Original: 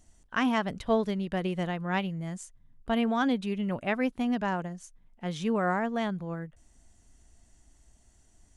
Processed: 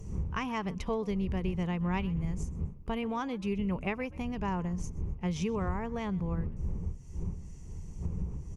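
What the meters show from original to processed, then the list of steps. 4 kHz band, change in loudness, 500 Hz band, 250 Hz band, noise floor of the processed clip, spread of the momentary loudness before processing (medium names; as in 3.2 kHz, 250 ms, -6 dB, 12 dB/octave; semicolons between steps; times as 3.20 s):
-7.0 dB, -4.5 dB, -5.0 dB, -3.5 dB, -45 dBFS, 12 LU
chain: wind noise 110 Hz -37 dBFS; bass shelf 120 Hz +6.5 dB; compression 4:1, threshold -35 dBFS, peak gain reduction 14.5 dB; rippled EQ curve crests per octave 0.79, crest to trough 9 dB; frequency-shifting echo 127 ms, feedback 34%, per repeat +55 Hz, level -22 dB; trim +3 dB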